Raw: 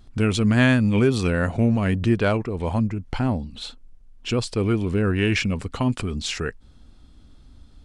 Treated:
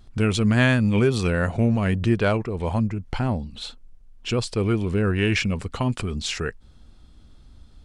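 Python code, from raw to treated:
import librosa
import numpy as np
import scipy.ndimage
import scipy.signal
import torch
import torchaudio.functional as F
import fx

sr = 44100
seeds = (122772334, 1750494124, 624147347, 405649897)

y = fx.peak_eq(x, sr, hz=270.0, db=-5.5, octaves=0.26)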